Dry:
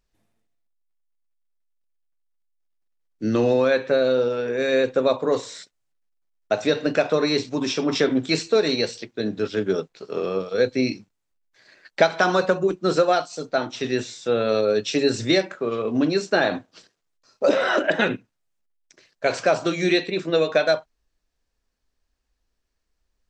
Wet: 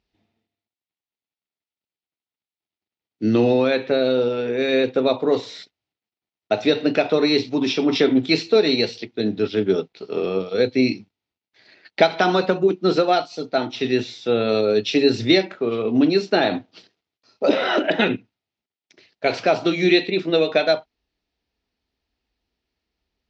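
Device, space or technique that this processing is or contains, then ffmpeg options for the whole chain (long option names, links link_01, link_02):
guitar cabinet: -af "highpass=82,equalizer=frequency=150:width_type=q:width=4:gain=-6,equalizer=frequency=550:width_type=q:width=4:gain=-7,equalizer=frequency=1100:width_type=q:width=4:gain=-8,equalizer=frequency=1600:width_type=q:width=4:gain=-8,lowpass=frequency=4600:width=0.5412,lowpass=frequency=4600:width=1.3066,volume=5dB"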